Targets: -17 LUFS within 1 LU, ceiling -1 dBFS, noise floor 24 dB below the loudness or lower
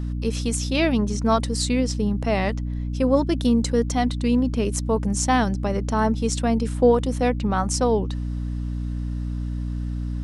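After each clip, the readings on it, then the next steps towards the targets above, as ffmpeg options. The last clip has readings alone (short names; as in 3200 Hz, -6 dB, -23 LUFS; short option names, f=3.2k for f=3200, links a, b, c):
hum 60 Hz; harmonics up to 300 Hz; hum level -24 dBFS; loudness -23.0 LUFS; peak -6.5 dBFS; loudness target -17.0 LUFS
-> -af "bandreject=f=60:t=h:w=6,bandreject=f=120:t=h:w=6,bandreject=f=180:t=h:w=6,bandreject=f=240:t=h:w=6,bandreject=f=300:t=h:w=6"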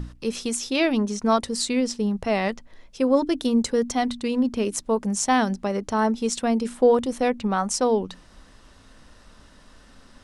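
hum none; loudness -23.5 LUFS; peak -8.0 dBFS; loudness target -17.0 LUFS
-> -af "volume=6.5dB"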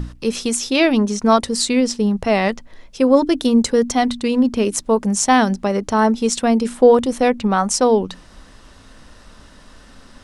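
loudness -17.0 LUFS; peak -1.5 dBFS; noise floor -45 dBFS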